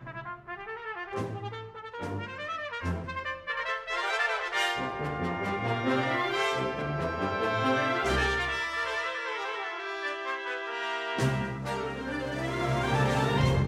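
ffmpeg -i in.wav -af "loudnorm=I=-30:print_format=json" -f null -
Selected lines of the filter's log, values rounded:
"input_i" : "-30.1",
"input_tp" : "-13.7",
"input_lra" : "5.6",
"input_thresh" : "-40.2",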